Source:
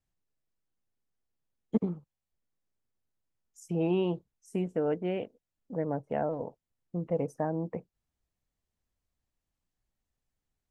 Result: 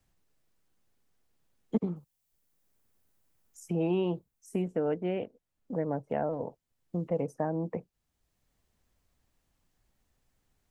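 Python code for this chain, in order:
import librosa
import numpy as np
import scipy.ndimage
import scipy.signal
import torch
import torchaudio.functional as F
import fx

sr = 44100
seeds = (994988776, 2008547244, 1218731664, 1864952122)

y = fx.high_shelf(x, sr, hz=8100.0, db=12.0, at=(1.96, 4.68))
y = fx.band_squash(y, sr, depth_pct=40)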